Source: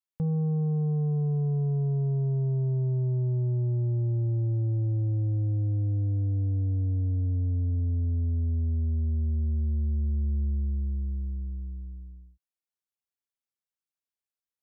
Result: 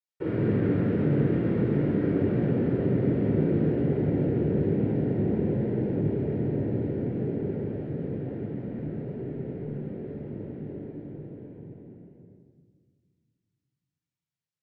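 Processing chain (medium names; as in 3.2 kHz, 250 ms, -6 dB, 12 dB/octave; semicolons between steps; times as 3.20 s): noise-vocoded speech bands 3; simulated room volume 2100 m³, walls mixed, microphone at 4.5 m; trim -8 dB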